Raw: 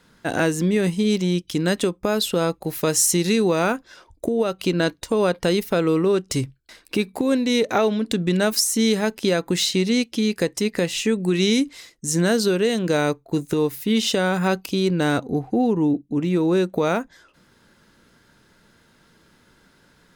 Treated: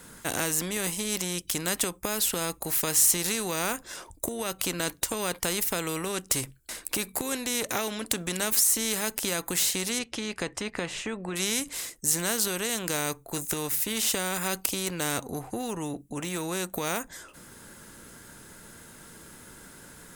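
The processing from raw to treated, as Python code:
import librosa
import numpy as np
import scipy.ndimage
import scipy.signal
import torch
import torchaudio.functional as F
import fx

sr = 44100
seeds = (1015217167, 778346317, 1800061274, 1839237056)

y = fx.lowpass(x, sr, hz=fx.line((9.98, 3800.0), (11.35, 1600.0)), slope=12, at=(9.98, 11.35), fade=0.02)
y = fx.high_shelf_res(y, sr, hz=6300.0, db=10.5, q=1.5)
y = fx.spectral_comp(y, sr, ratio=2.0)
y = F.gain(torch.from_numpy(y), -5.0).numpy()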